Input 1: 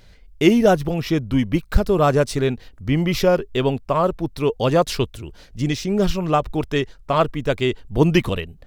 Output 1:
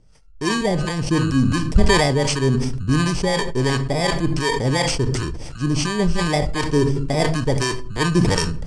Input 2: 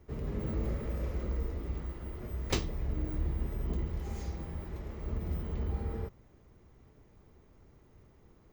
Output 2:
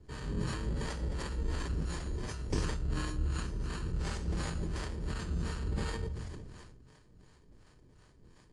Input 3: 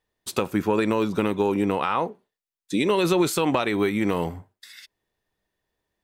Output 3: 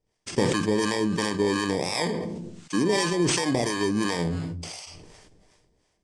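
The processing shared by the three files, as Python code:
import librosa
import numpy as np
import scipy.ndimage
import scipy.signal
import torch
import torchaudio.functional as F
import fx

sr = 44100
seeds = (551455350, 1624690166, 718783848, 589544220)

y = fx.bit_reversed(x, sr, seeds[0], block=32)
y = scipy.signal.sosfilt(scipy.signal.butter(8, 8600.0, 'lowpass', fs=sr, output='sos'), y)
y = fx.rider(y, sr, range_db=5, speed_s=0.5)
y = fx.harmonic_tremolo(y, sr, hz=2.8, depth_pct=70, crossover_hz=610.0)
y = fx.room_shoebox(y, sr, seeds[1], volume_m3=390.0, walls='furnished', distance_m=0.45)
y = fx.sustainer(y, sr, db_per_s=28.0)
y = F.gain(torch.from_numpy(y), 1.5).numpy()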